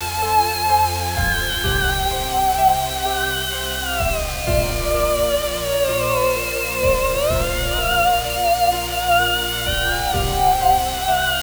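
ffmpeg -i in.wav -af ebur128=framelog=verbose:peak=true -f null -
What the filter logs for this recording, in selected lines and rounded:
Integrated loudness:
  I:         -18.6 LUFS
  Threshold: -28.6 LUFS
Loudness range:
  LRA:         1.8 LU
  Threshold: -38.8 LUFS
  LRA low:   -19.7 LUFS
  LRA high:  -17.9 LUFS
True peak:
  Peak:       -4.5 dBFS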